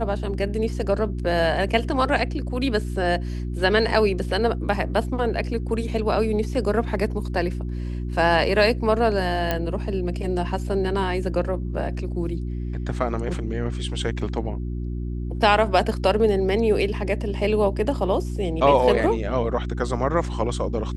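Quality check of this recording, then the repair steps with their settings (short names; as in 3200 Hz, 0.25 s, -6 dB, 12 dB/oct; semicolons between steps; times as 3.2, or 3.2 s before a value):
hum 60 Hz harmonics 6 -28 dBFS
9.51 pop -9 dBFS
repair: de-click; de-hum 60 Hz, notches 6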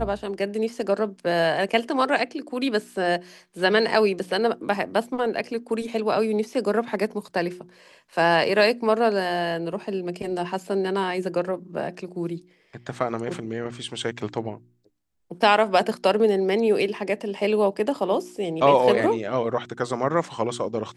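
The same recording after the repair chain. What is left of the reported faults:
none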